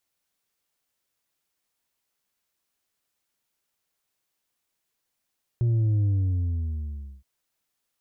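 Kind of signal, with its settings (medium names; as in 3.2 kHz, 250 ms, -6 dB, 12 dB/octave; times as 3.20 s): sub drop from 120 Hz, over 1.62 s, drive 4 dB, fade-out 1.19 s, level -20 dB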